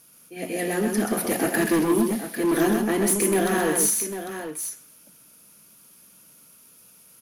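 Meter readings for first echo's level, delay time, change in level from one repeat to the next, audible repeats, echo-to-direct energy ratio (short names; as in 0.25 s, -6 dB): -4.5 dB, 0.129 s, no steady repeat, 2, -3.5 dB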